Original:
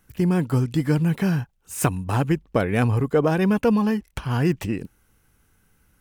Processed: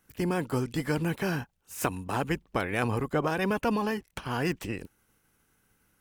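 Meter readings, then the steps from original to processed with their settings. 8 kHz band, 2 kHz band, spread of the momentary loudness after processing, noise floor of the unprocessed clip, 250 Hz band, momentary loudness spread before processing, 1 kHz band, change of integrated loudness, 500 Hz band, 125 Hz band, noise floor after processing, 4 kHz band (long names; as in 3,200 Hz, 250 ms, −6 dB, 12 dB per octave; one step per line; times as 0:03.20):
−7.0 dB, −2.0 dB, 8 LU, −64 dBFS, −9.5 dB, 8 LU, −3.0 dB, −8.0 dB, −7.0 dB, −11.5 dB, −72 dBFS, −2.0 dB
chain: ceiling on every frequency bin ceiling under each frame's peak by 13 dB
level −8 dB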